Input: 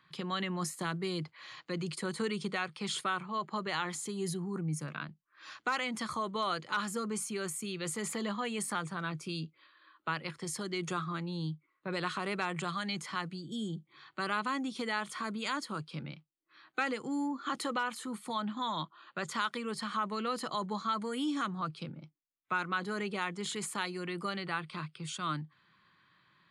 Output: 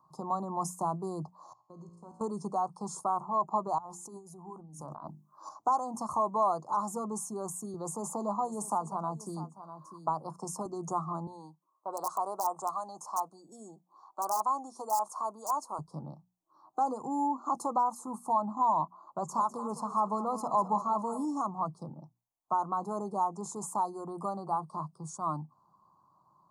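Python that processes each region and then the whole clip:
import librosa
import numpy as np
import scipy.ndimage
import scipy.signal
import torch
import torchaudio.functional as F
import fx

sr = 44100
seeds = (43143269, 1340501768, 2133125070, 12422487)

y = fx.chain(x, sr, fx.lowpass(hz=7100.0, slope=12),
    fx.level_steps(step_db=19),
    fx.comb_fb(f0_hz=57.0, decay_s=1.5, harmonics='all', damping=0.0, mix_pct=80), at=(1.53, 2.21))
y = fx.chain(y, sr, fx.low_shelf(hz=160.0, db=-6.0),
    fx.hum_notches(base_hz=50, count=7),
    fx.over_compress(threshold_db=-47.0, ratio=-1.0), at=(3.78, 5.49))
y = fx.chain(y, sr, fx.highpass(hz=120.0, slope=12),
    fx.echo_single(ms=647, db=-16.5),
    fx.band_squash(depth_pct=40), at=(7.74, 10.66))
y = fx.chain(y, sr, fx.overflow_wrap(gain_db=23.0),
    fx.highpass(hz=490.0, slope=12), at=(11.27, 15.79))
y = fx.chain(y, sr, fx.low_shelf(hz=160.0, db=4.5),
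    fx.echo_split(split_hz=380.0, low_ms=154, high_ms=203, feedback_pct=52, wet_db=-13.0), at=(18.99, 21.25))
y = scipy.signal.sosfilt(scipy.signal.ellip(3, 1.0, 70, [950.0, 6000.0], 'bandstop', fs=sr, output='sos'), y)
y = fx.band_shelf(y, sr, hz=890.0, db=12.0, octaves=1.2)
y = fx.hum_notches(y, sr, base_hz=60, count=4)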